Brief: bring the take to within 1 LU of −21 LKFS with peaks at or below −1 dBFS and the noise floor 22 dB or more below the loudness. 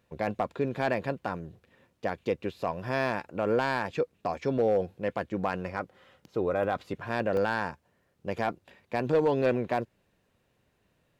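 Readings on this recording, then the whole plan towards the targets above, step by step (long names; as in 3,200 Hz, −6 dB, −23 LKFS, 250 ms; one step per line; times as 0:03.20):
share of clipped samples 0.3%; peaks flattened at −17.5 dBFS; number of dropouts 2; longest dropout 1.5 ms; integrated loudness −30.5 LKFS; sample peak −17.5 dBFS; target loudness −21.0 LKFS
→ clipped peaks rebuilt −17.5 dBFS
repair the gap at 0:00.68/0:07.37, 1.5 ms
level +9.5 dB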